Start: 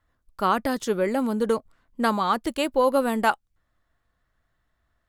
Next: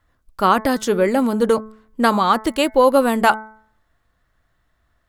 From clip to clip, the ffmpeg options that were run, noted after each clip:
ffmpeg -i in.wav -af "bandreject=frequency=217.8:width_type=h:width=4,bandreject=frequency=435.6:width_type=h:width=4,bandreject=frequency=653.4:width_type=h:width=4,bandreject=frequency=871.2:width_type=h:width=4,bandreject=frequency=1089:width_type=h:width=4,bandreject=frequency=1306.8:width_type=h:width=4,bandreject=frequency=1524.6:width_type=h:width=4,bandreject=frequency=1742.4:width_type=h:width=4,bandreject=frequency=1960.2:width_type=h:width=4,bandreject=frequency=2178:width_type=h:width=4,volume=7dB" out.wav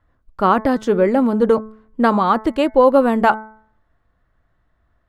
ffmpeg -i in.wav -af "lowpass=frequency=1200:poles=1,volume=2.5dB" out.wav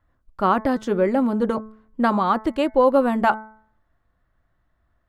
ffmpeg -i in.wav -af "bandreject=frequency=450:width=12,volume=-4dB" out.wav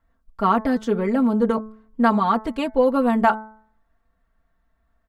ffmpeg -i in.wav -af "aecho=1:1:4.4:0.8,volume=-2.5dB" out.wav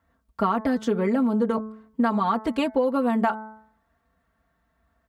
ffmpeg -i in.wav -af "highpass=frequency=58:width=0.5412,highpass=frequency=58:width=1.3066,acompressor=threshold=-23dB:ratio=6,volume=3.5dB" out.wav

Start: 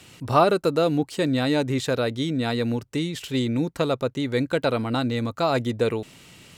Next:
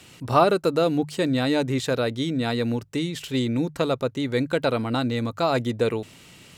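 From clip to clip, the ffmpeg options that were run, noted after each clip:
ffmpeg -i in.wav -af "bandreject=frequency=50:width_type=h:width=6,bandreject=frequency=100:width_type=h:width=6,bandreject=frequency=150:width_type=h:width=6" out.wav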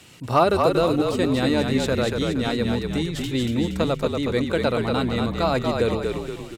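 ffmpeg -i in.wav -filter_complex "[0:a]asoftclip=type=hard:threshold=-7dB,asplit=7[link_01][link_02][link_03][link_04][link_05][link_06][link_07];[link_02]adelay=235,afreqshift=-41,volume=-4dB[link_08];[link_03]adelay=470,afreqshift=-82,volume=-10.2dB[link_09];[link_04]adelay=705,afreqshift=-123,volume=-16.4dB[link_10];[link_05]adelay=940,afreqshift=-164,volume=-22.6dB[link_11];[link_06]adelay=1175,afreqshift=-205,volume=-28.8dB[link_12];[link_07]adelay=1410,afreqshift=-246,volume=-35dB[link_13];[link_01][link_08][link_09][link_10][link_11][link_12][link_13]amix=inputs=7:normalize=0" out.wav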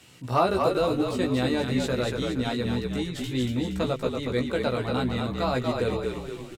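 ffmpeg -i in.wav -filter_complex "[0:a]asplit=2[link_01][link_02];[link_02]adelay=16,volume=-3.5dB[link_03];[link_01][link_03]amix=inputs=2:normalize=0,volume=-6dB" out.wav

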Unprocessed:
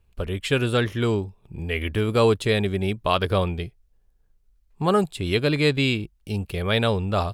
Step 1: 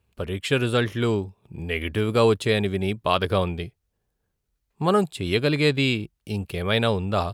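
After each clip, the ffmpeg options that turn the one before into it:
ffmpeg -i in.wav -af "highpass=86" out.wav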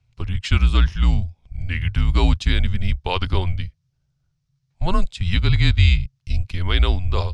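ffmpeg -i in.wav -af "lowpass=frequency=5700:width_type=q:width=2.4,lowshelf=frequency=340:width_type=q:width=3:gain=8,afreqshift=-180,volume=-1.5dB" out.wav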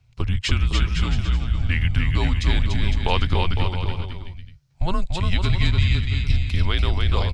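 ffmpeg -i in.wav -filter_complex "[0:a]acompressor=threshold=-22dB:ratio=6,asplit=2[link_01][link_02];[link_02]aecho=0:1:290|507.5|670.6|793|884.7:0.631|0.398|0.251|0.158|0.1[link_03];[link_01][link_03]amix=inputs=2:normalize=0,volume=5dB" out.wav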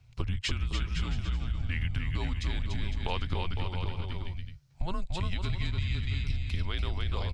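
ffmpeg -i in.wav -af "acompressor=threshold=-28dB:ratio=5" out.wav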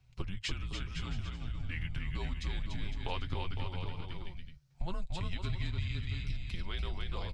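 ffmpeg -i in.wav -af "flanger=delay=5.3:depth=2.6:regen=-37:speed=0.44:shape=sinusoidal,volume=-1dB" out.wav

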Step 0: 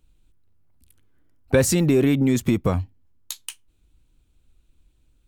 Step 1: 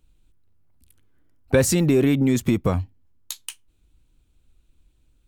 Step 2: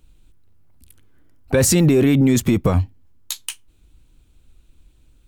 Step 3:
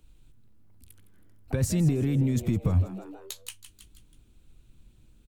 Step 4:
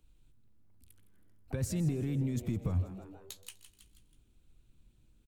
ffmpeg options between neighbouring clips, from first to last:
ffmpeg -i in.wav -af anull out.wav
ffmpeg -i in.wav -af "alimiter=limit=-16dB:level=0:latency=1:release=11,volume=8dB" out.wav
ffmpeg -i in.wav -filter_complex "[0:a]asplit=5[link_01][link_02][link_03][link_04][link_05];[link_02]adelay=161,afreqshift=100,volume=-14.5dB[link_06];[link_03]adelay=322,afreqshift=200,volume=-21.2dB[link_07];[link_04]adelay=483,afreqshift=300,volume=-28dB[link_08];[link_05]adelay=644,afreqshift=400,volume=-34.7dB[link_09];[link_01][link_06][link_07][link_08][link_09]amix=inputs=5:normalize=0,acrossover=split=180[link_10][link_11];[link_11]acompressor=threshold=-38dB:ratio=2[link_12];[link_10][link_12]amix=inputs=2:normalize=0,volume=-4dB" out.wav
ffmpeg -i in.wav -af "aecho=1:1:125|250|375|500|625:0.1|0.057|0.0325|0.0185|0.0106,volume=-8dB" out.wav

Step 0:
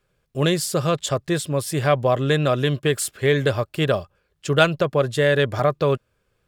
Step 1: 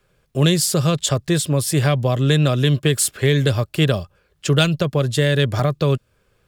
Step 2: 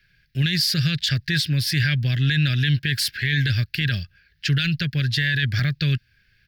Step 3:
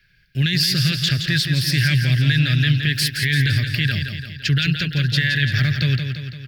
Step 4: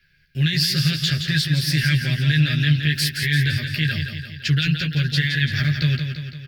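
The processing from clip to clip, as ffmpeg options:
ffmpeg -i in.wav -filter_complex "[0:a]acrossover=split=260|3000[link_01][link_02][link_03];[link_02]acompressor=threshold=-31dB:ratio=3[link_04];[link_01][link_04][link_03]amix=inputs=3:normalize=0,volume=7dB" out.wav
ffmpeg -i in.wav -af "firequalizer=gain_entry='entry(120,0);entry(490,-22);entry(1100,-25);entry(1600,10);entry(3300,3);entry(4700,9);entry(7400,-15);entry(15000,0)':delay=0.05:min_phase=1,alimiter=limit=-12dB:level=0:latency=1:release=14" out.wav
ffmpeg -i in.wav -af "aecho=1:1:170|340|510|680|850|1020|1190:0.447|0.25|0.14|0.0784|0.0439|0.0246|0.0138,volume=2dB" out.wav
ffmpeg -i in.wav -filter_complex "[0:a]asplit=2[link_01][link_02];[link_02]adelay=13,volume=-3dB[link_03];[link_01][link_03]amix=inputs=2:normalize=0,volume=-3.5dB" out.wav

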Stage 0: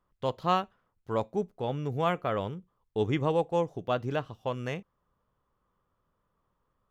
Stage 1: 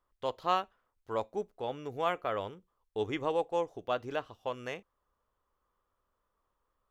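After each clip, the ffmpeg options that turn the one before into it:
ffmpeg -i in.wav -af "equalizer=frequency=150:width=1.1:gain=-14.5,volume=-2dB" out.wav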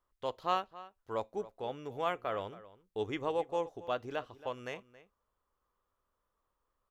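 ffmpeg -i in.wav -filter_complex "[0:a]asplit=2[link_01][link_02];[link_02]adelay=274.1,volume=-17dB,highshelf=frequency=4000:gain=-6.17[link_03];[link_01][link_03]amix=inputs=2:normalize=0,volume=-2.5dB" out.wav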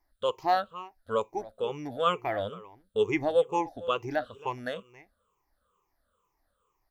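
ffmpeg -i in.wav -af "afftfilt=real='re*pow(10,19/40*sin(2*PI*(0.74*log(max(b,1)*sr/1024/100)/log(2)-(-2.2)*(pts-256)/sr)))':imag='im*pow(10,19/40*sin(2*PI*(0.74*log(max(b,1)*sr/1024/100)/log(2)-(-2.2)*(pts-256)/sr)))':win_size=1024:overlap=0.75,volume=3dB" out.wav

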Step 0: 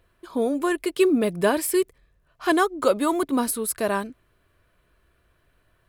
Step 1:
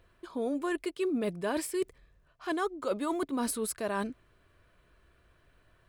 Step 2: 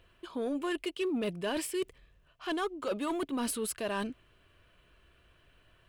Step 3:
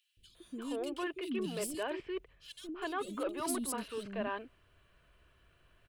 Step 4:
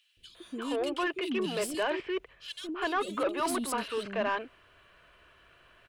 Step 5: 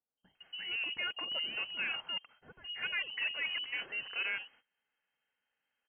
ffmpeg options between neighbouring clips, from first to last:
ffmpeg -i in.wav -af "equalizer=frequency=13000:width_type=o:width=0.49:gain=-12,areverse,acompressor=threshold=-29dB:ratio=6,areverse" out.wav
ffmpeg -i in.wav -af "equalizer=frequency=2900:width_type=o:width=0.45:gain=10,asoftclip=type=tanh:threshold=-25dB" out.wav
ffmpeg -i in.wav -filter_complex "[0:a]acrossover=split=320|3000[link_01][link_02][link_03];[link_01]adelay=170[link_04];[link_02]adelay=350[link_05];[link_04][link_05][link_03]amix=inputs=3:normalize=0,volume=-2dB" out.wav
ffmpeg -i in.wav -filter_complex "[0:a]asplit=2[link_01][link_02];[link_02]highpass=frequency=720:poles=1,volume=14dB,asoftclip=type=tanh:threshold=-22.5dB[link_03];[link_01][link_03]amix=inputs=2:normalize=0,lowpass=frequency=3100:poles=1,volume=-6dB,volume=3.5dB" out.wav
ffmpeg -i in.wav -af "agate=range=-20dB:threshold=-54dB:ratio=16:detection=peak,lowpass=frequency=2700:width_type=q:width=0.5098,lowpass=frequency=2700:width_type=q:width=0.6013,lowpass=frequency=2700:width_type=q:width=0.9,lowpass=frequency=2700:width_type=q:width=2.563,afreqshift=-3200,volume=-6dB" out.wav

